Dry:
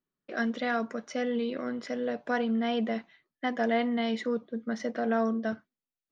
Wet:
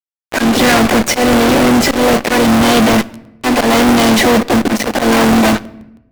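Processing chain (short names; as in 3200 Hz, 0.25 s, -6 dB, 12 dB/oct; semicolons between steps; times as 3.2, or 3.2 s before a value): HPF 55 Hz 12 dB/oct; auto swell 0.328 s; in parallel at -5.5 dB: sample-and-hold 35×; on the sum: harmoniser +3 st -10 dB, +5 st -16 dB, +7 st -9 dB; fuzz box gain 52 dB, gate -47 dBFS; on a send at -18 dB: reverb RT60 0.95 s, pre-delay 4 ms; on the sum: crackling interface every 0.16 s, samples 64, repeat, from 0.53; gain +4.5 dB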